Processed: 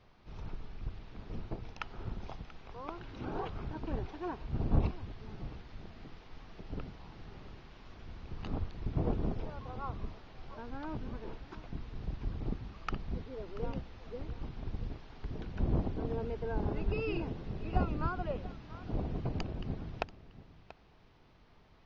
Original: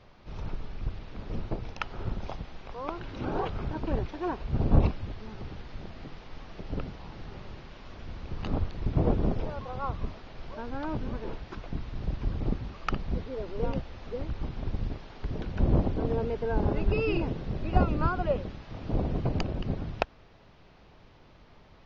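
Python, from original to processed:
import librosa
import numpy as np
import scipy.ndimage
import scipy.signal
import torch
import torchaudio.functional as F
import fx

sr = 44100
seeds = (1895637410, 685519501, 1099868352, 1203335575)

p1 = fx.peak_eq(x, sr, hz=560.0, db=-5.0, octaves=0.2)
p2 = p1 + fx.echo_single(p1, sr, ms=685, db=-16.5, dry=0)
y = p2 * librosa.db_to_amplitude(-7.0)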